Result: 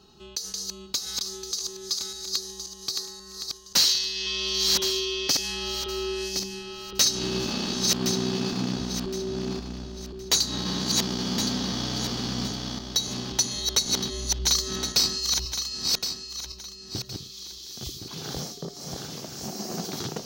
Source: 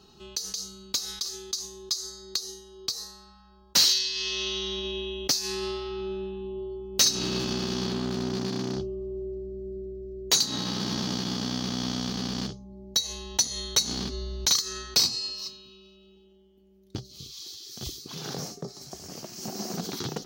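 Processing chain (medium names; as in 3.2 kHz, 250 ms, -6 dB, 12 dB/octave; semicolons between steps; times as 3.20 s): backward echo that repeats 533 ms, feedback 54%, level -3 dB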